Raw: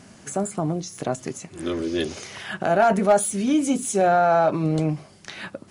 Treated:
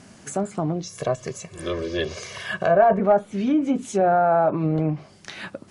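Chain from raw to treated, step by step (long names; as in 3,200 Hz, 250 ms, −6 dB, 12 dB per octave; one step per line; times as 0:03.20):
treble cut that deepens with the level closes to 1,400 Hz, closed at −16 dBFS
0:00.84–0:03.00: comb filter 1.8 ms, depth 77%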